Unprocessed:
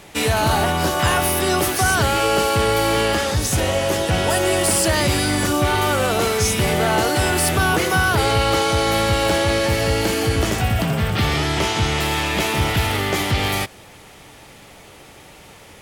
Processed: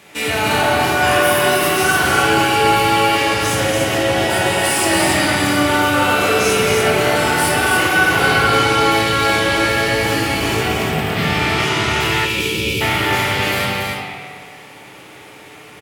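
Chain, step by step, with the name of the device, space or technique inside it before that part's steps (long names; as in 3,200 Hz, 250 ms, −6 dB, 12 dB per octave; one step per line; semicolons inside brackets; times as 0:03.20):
stadium PA (high-pass filter 120 Hz 12 dB per octave; parametric band 2,200 Hz +5 dB 1.1 octaves; loudspeakers that aren't time-aligned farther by 59 metres −10 dB, 97 metres −4 dB; convolution reverb RT60 1.5 s, pre-delay 17 ms, DRR −3 dB)
time-frequency box erased 0:12.26–0:12.81, 570–2,200 Hz
high-shelf EQ 10,000 Hz +3 dB
spring reverb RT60 1.9 s, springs 55 ms, chirp 30 ms, DRR 5 dB
level −5 dB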